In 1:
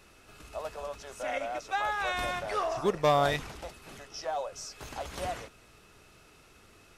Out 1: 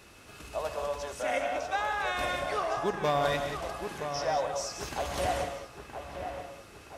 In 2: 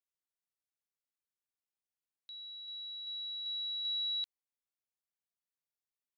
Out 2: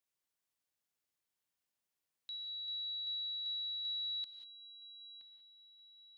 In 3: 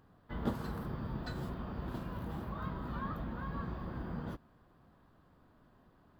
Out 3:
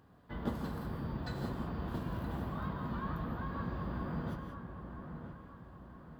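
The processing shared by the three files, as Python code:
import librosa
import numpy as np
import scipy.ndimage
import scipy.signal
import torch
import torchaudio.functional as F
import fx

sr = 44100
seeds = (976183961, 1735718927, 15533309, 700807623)

p1 = scipy.signal.sosfilt(scipy.signal.butter(2, 43.0, 'highpass', fs=sr, output='sos'), x)
p2 = fx.notch(p1, sr, hz=1300.0, q=26.0)
p3 = fx.rider(p2, sr, range_db=4, speed_s=0.5)
p4 = p3 + fx.echo_wet_lowpass(p3, sr, ms=971, feedback_pct=45, hz=2400.0, wet_db=-8.0, dry=0)
y = fx.rev_gated(p4, sr, seeds[0], gate_ms=210, shape='rising', drr_db=5.5)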